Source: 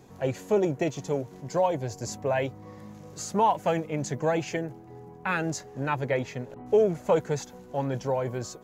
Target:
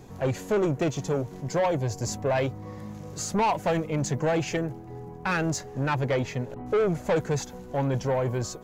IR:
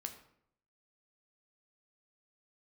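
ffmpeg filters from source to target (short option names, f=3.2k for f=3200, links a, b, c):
-af "lowshelf=f=74:g=11.5,asoftclip=type=tanh:threshold=-23.5dB,volume=4dB"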